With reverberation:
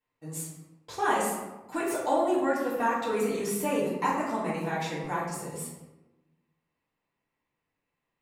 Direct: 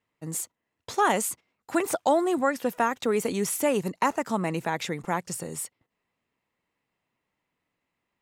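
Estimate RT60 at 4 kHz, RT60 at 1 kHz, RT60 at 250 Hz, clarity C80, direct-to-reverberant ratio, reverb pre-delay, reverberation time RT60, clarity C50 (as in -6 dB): 0.65 s, 1.0 s, 1.2 s, 4.5 dB, -8.5 dB, 3 ms, 1.0 s, 1.5 dB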